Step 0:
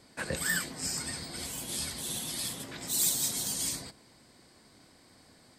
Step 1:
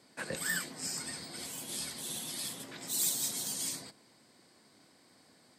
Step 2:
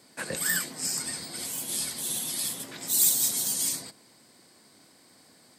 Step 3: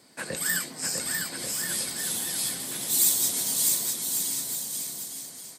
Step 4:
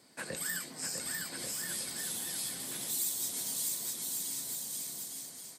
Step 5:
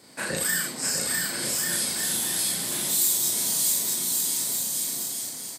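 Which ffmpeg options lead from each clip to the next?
-af "highpass=150,volume=0.668"
-af "highshelf=f=8300:g=9.5,volume=1.58"
-af "aecho=1:1:650|1138|1503|1777|1983:0.631|0.398|0.251|0.158|0.1"
-af "acompressor=threshold=0.0282:ratio=2,volume=0.562"
-af "aecho=1:1:34.99|81.63:0.891|0.562,volume=2.51"

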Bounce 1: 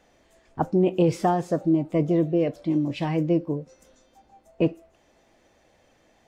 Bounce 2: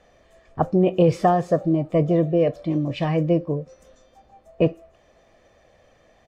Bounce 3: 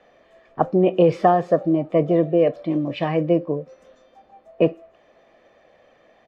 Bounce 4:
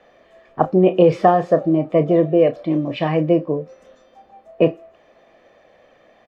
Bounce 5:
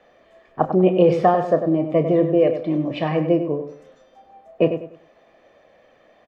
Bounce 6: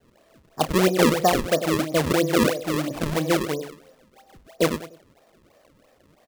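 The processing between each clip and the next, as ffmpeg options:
-af "aemphasis=mode=reproduction:type=cd,aecho=1:1:1.7:0.43,volume=1.5"
-filter_complex "[0:a]acrossover=split=180 4200:gain=0.178 1 0.178[s0][s1][s2];[s0][s1][s2]amix=inputs=3:normalize=0,volume=1.33"
-filter_complex "[0:a]asplit=2[s0][s1];[s1]adelay=32,volume=0.266[s2];[s0][s2]amix=inputs=2:normalize=0,volume=1.33"
-filter_complex "[0:a]asplit=2[s0][s1];[s1]adelay=98,lowpass=f=3200:p=1,volume=0.376,asplit=2[s2][s3];[s3]adelay=98,lowpass=f=3200:p=1,volume=0.3,asplit=2[s4][s5];[s5]adelay=98,lowpass=f=3200:p=1,volume=0.3,asplit=2[s6][s7];[s7]adelay=98,lowpass=f=3200:p=1,volume=0.3[s8];[s0][s2][s4][s6][s8]amix=inputs=5:normalize=0,volume=0.75"
-af "acrusher=samples=34:mix=1:aa=0.000001:lfo=1:lforange=54.4:lforate=3,volume=0.668"

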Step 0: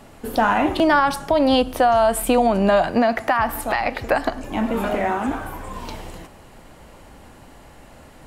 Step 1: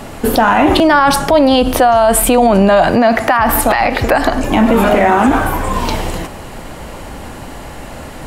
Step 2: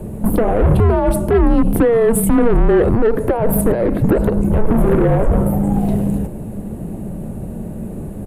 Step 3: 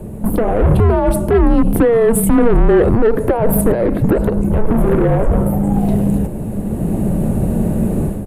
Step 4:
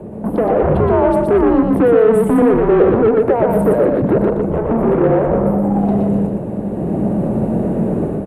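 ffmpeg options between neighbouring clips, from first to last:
-af "alimiter=level_in=7.08:limit=0.891:release=50:level=0:latency=1,volume=0.891"
-af "firequalizer=gain_entry='entry(490,0);entry(1500,-21);entry(5600,-29);entry(9700,-9)':delay=0.05:min_phase=1,asoftclip=type=tanh:threshold=0.282,afreqshift=-230,volume=1.5"
-af "dynaudnorm=f=350:g=3:m=4.47,volume=0.891"
-filter_complex "[0:a]bandpass=f=570:t=q:w=0.53:csg=0,asoftclip=type=tanh:threshold=0.335,asplit=2[s0][s1];[s1]aecho=0:1:120|240|360|480:0.668|0.167|0.0418|0.0104[s2];[s0][s2]amix=inputs=2:normalize=0,volume=1.41"

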